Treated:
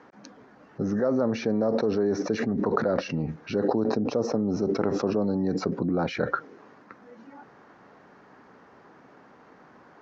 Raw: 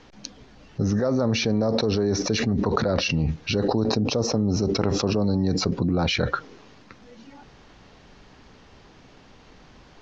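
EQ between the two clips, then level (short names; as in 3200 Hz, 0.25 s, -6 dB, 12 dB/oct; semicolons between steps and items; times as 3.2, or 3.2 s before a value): dynamic EQ 1100 Hz, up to -5 dB, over -43 dBFS, Q 1.2; HPF 210 Hz 12 dB/oct; resonant high shelf 2200 Hz -12 dB, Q 1.5; 0.0 dB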